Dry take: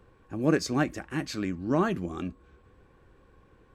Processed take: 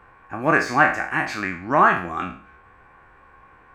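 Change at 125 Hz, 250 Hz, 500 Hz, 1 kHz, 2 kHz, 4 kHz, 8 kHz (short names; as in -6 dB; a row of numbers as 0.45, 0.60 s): 0.0 dB, 0.0 dB, +5.5 dB, +16.0 dB, +17.0 dB, +2.0 dB, n/a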